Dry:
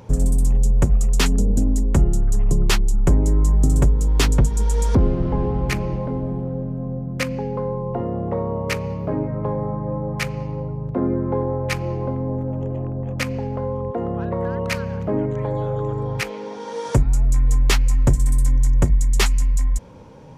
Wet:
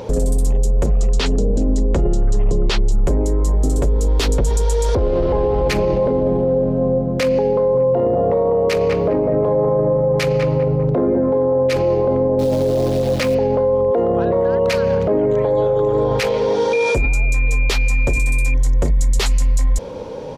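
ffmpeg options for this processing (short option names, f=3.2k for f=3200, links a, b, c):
-filter_complex "[0:a]asettb=1/sr,asplit=3[a][b][c];[a]atrim=end=0.864[d];[b]atrim=start=0.86:end=2.92,asetpts=PTS-STARTPTS,afade=t=in:d=0.004:c=qsin,afade=t=out:st=2.056:d=0.004:c=qsin,lowpass=5.6k[e];[c]atrim=start=2.916[f];[d][e]acrossfade=d=0.004:c1=hsin:c2=qsin[g];[g][f]acrossfade=d=0.004:c1=qsin:c2=hsin,asettb=1/sr,asplit=3[h][i][j];[h]atrim=end=4.424[k];[i]atrim=start=4.42:end=5.68,asetpts=PTS-STARTPTS,afade=t=in:d=0.004:c=qsin,afade=t=out:st=1.256:d=0.004:c=qsin,equalizer=f=220:t=o:w=1.1:g=-8.5[l];[j]atrim=start=5.676[m];[k][l]acrossfade=d=0.004:c1=hsin:c2=qsin[n];[n][m]acrossfade=d=0.004:c1=qsin:c2=hsin,asplit=3[o][p][q];[o]afade=t=out:st=7.74:d=0.02[r];[p]asplit=2[s][t];[t]adelay=199,lowpass=f=1.2k:p=1,volume=-5dB,asplit=2[u][v];[v]adelay=199,lowpass=f=1.2k:p=1,volume=0.5,asplit=2[w][x];[x]adelay=199,lowpass=f=1.2k:p=1,volume=0.5,asplit=2[y][z];[z]adelay=199,lowpass=f=1.2k:p=1,volume=0.5,asplit=2[aa][ab];[ab]adelay=199,lowpass=f=1.2k:p=1,volume=0.5,asplit=2[ac][ad];[ad]adelay=199,lowpass=f=1.2k:p=1,volume=0.5[ae];[s][u][w][y][aa][ac][ae]amix=inputs=7:normalize=0,afade=t=in:st=7.74:d=0.02,afade=t=out:st=11.75:d=0.02[af];[q]afade=t=in:st=11.75:d=0.02[ag];[r][af][ag]amix=inputs=3:normalize=0,asettb=1/sr,asplit=3[ah][ai][aj];[ah]atrim=end=12.394[ak];[ai]atrim=start=12.39:end=13.35,asetpts=PTS-STARTPTS,afade=t=in:d=0.004:c=qsin,afade=t=out:st=0.956:d=0.004:c=qsin,acrusher=bits=8:dc=4:mix=0:aa=0.000001[al];[aj]atrim=start=13.346[am];[ak][al]acrossfade=d=0.004:c1=hsin:c2=qsin[an];[an][am]acrossfade=d=0.004:c1=qsin:c2=hsin,asplit=2[ao][ap];[ap]afade=t=in:st=15.56:d=0.01,afade=t=out:st=16.12:d=0.01,aecho=0:1:370|740|1110|1480|1850:0.316228|0.142302|0.0640361|0.0288163|0.0129673[aq];[ao][aq]amix=inputs=2:normalize=0,asettb=1/sr,asplit=3[ar][as][at];[ar]atrim=end=16.734[au];[as]atrim=start=16.73:end=18.54,asetpts=PTS-STARTPTS,afade=t=in:d=0.004:c=qsin,afade=t=out:st=1.806:d=0.004:c=qsin,aeval=exprs='val(0)+0.0447*sin(2*PI*2400*n/s)':c=same[av];[at]atrim=start=18.536[aw];[au][av]acrossfade=d=0.004:c1=hsin:c2=qsin[ax];[ax][aw]acrossfade=d=0.004:c1=qsin:c2=hsin,equalizer=f=125:t=o:w=1:g=-5,equalizer=f=500:t=o:w=1:g=11,equalizer=f=4k:t=o:w=1:g=7,alimiter=limit=-18.5dB:level=0:latency=1:release=14,volume=8.5dB"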